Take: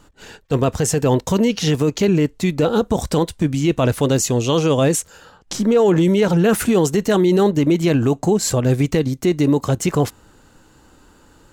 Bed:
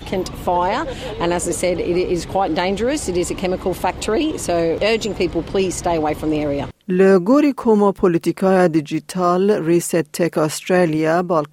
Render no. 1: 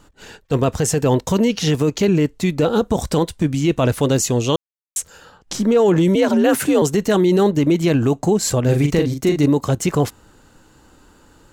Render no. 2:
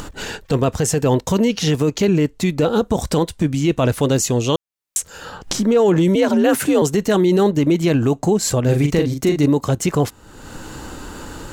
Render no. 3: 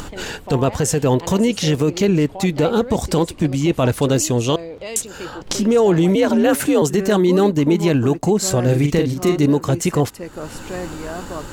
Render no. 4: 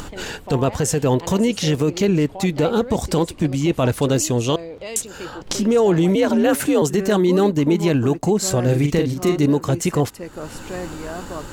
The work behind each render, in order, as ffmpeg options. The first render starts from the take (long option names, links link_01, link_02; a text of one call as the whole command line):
ffmpeg -i in.wav -filter_complex "[0:a]asettb=1/sr,asplit=3[link_01][link_02][link_03];[link_01]atrim=end=6.154[link_04];[link_02]atrim=start=6.15:end=6.82,asetpts=PTS-STARTPTS,afade=type=in:duration=0.004:curve=qsin,afade=type=out:start_time=0.666:duration=0.004:curve=qsin,afreqshift=59[link_05];[link_03]atrim=start=6.816[link_06];[link_04][link_05]acrossfade=duration=0.004:curve1=hsin:curve2=qsin[link_07];[link_07][link_06]acrossfade=duration=0.004:curve1=qsin:curve2=hsin,asettb=1/sr,asplit=3[link_08][link_09][link_10];[link_08]atrim=end=8.644[link_11];[link_09]atrim=start=8.64:end=9.46,asetpts=PTS-STARTPTS,afade=type=in:duration=0.004:curve=qsin,afade=type=out:start_time=0.816:duration=0.004:curve=qsin,asplit=2[link_12][link_13];[link_13]adelay=41,volume=-5dB[link_14];[link_12][link_14]amix=inputs=2:normalize=0,atrim=end_sample=36162[link_15];[link_10]atrim=start=9.456[link_16];[link_11][link_15]acrossfade=duration=0.004:curve1=hsin:curve2=qsin[link_17];[link_17][link_16]acrossfade=duration=0.004:curve1=qsin:curve2=hsin,asplit=3[link_18][link_19][link_20];[link_18]atrim=end=4.56,asetpts=PTS-STARTPTS,afade=type=out:start_time=4.556:duration=0.004:curve=hsin[link_21];[link_19]atrim=start=4.56:end=4.96,asetpts=PTS-STARTPTS,volume=0[link_22];[link_20]atrim=start=4.96,asetpts=PTS-STARTPTS,afade=type=in:duration=0.004:curve=hsin[link_23];[link_21][link_22][link_23]concat=n=3:v=0:a=1" out.wav
ffmpeg -i in.wav -af "acompressor=mode=upward:threshold=-17dB:ratio=2.5" out.wav
ffmpeg -i in.wav -i bed.wav -filter_complex "[1:a]volume=-14dB[link_01];[0:a][link_01]amix=inputs=2:normalize=0" out.wav
ffmpeg -i in.wav -af "volume=-1.5dB" out.wav